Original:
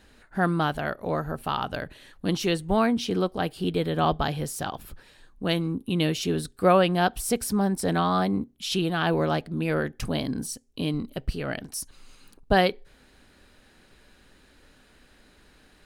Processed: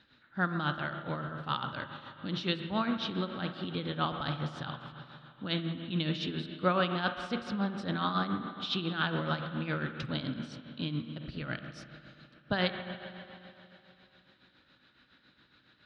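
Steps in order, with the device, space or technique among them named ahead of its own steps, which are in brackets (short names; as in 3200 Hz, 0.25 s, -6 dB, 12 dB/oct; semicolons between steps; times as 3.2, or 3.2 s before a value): combo amplifier with spring reverb and tremolo (spring tank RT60 3 s, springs 39/60 ms, chirp 30 ms, DRR 6 dB; tremolo 7.2 Hz, depth 58%; speaker cabinet 110–4500 Hz, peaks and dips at 130 Hz +7 dB, 430 Hz -9 dB, 720 Hz -7 dB, 1400 Hz +6 dB, 3700 Hz +9 dB); gain -5.5 dB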